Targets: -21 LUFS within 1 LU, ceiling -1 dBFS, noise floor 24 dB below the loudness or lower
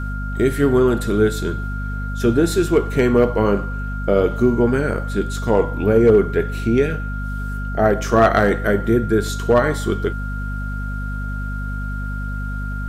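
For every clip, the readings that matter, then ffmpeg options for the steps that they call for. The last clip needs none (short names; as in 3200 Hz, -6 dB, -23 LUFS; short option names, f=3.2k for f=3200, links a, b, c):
hum 50 Hz; harmonics up to 250 Hz; hum level -23 dBFS; steady tone 1400 Hz; tone level -31 dBFS; loudness -19.5 LUFS; peak -4.0 dBFS; loudness target -21.0 LUFS
-> -af "bandreject=f=50:t=h:w=4,bandreject=f=100:t=h:w=4,bandreject=f=150:t=h:w=4,bandreject=f=200:t=h:w=4,bandreject=f=250:t=h:w=4"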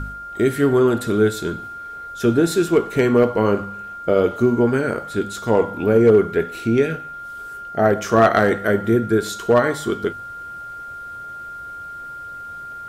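hum none; steady tone 1400 Hz; tone level -31 dBFS
-> -af "bandreject=f=1.4k:w=30"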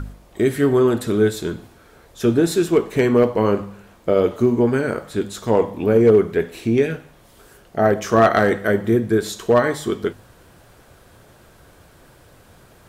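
steady tone none; loudness -18.5 LUFS; peak -4.5 dBFS; loudness target -21.0 LUFS
-> -af "volume=-2.5dB"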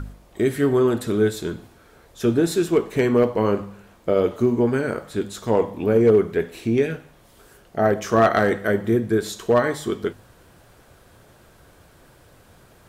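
loudness -21.0 LUFS; peak -7.0 dBFS; noise floor -53 dBFS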